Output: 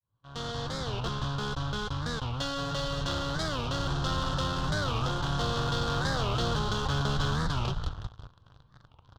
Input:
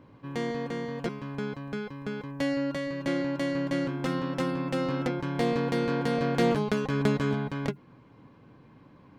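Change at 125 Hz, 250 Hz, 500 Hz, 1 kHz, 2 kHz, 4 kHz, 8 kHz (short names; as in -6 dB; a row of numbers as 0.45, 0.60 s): +3.0, -7.5, -6.0, +3.0, 0.0, +8.5, +7.0 dB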